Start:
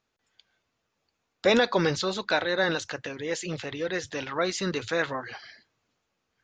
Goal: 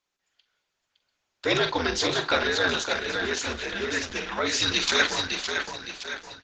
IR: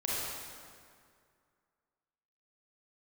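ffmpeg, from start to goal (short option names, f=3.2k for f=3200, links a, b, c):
-filter_complex "[0:a]asplit=3[a][b][c];[a]afade=t=out:st=1.55:d=0.02[d];[b]bandreject=f=60:t=h:w=6,bandreject=f=120:t=h:w=6,bandreject=f=180:t=h:w=6,bandreject=f=240:t=h:w=6,bandreject=f=300:t=h:w=6,bandreject=f=360:t=h:w=6,bandreject=f=420:t=h:w=6,bandreject=f=480:t=h:w=6,bandreject=f=540:t=h:w=6,bandreject=f=600:t=h:w=6,afade=t=in:st=1.55:d=0.02,afade=t=out:st=2.36:d=0.02[e];[c]afade=t=in:st=2.36:d=0.02[f];[d][e][f]amix=inputs=3:normalize=0,asettb=1/sr,asplit=3[g][h][i];[g]atrim=end=4.604[j];[h]atrim=start=4.6:end=5.07,asetpts=PTS-STARTPTS,afade=t=in:d=0.004:c=qsin,afade=t=out:st=0.466:d=0.004:c=qsin,equalizer=f=5.1k:t=o:w=2.4:g=13[k];[i]atrim=start=5.066[l];[j][k]acrossfade=d=0.004:c1=hsin:c2=qsin[m];[m][l]acrossfade=d=0.004:c1=qsin:c2=hsin,asplit=2[n][o];[1:a]atrim=start_sample=2205,adelay=85[p];[o][p]afir=irnorm=-1:irlink=0,volume=-25.5dB[q];[n][q]amix=inputs=2:normalize=0,dynaudnorm=f=350:g=9:m=9.5dB,afreqshift=-87,lowshelf=f=450:g=-10.5,aecho=1:1:563|1126|1689|2252|2815:0.531|0.218|0.0892|0.0366|0.015,asettb=1/sr,asplit=3[r][s][t];[r]atrim=end=3.114[u];[s]atrim=start=3.11:end=4.07,asetpts=PTS-STARTPTS,afade=t=in:d=0.004:c=qsin,afade=t=out:st=0.956:d=0.004:c=qsin,acrossover=split=6800[v][w];[w]acompressor=threshold=-48dB:ratio=4:attack=1:release=60[x];[v][x]amix=inputs=2:normalize=0[y];[t]atrim=start=4.066[z];[u][y]acrossfade=d=0.004:c1=hsin:c2=qsin[aa];[aa][z]acrossfade=d=0.004:c1=qsin:c2=hsin,bandreject=f=1.2k:w=11,asplit=2[ab][ac];[ac]adelay=44,volume=-9dB[ad];[ab][ad]amix=inputs=2:normalize=0,volume=-2dB" -ar 48000 -c:a libopus -b:a 10k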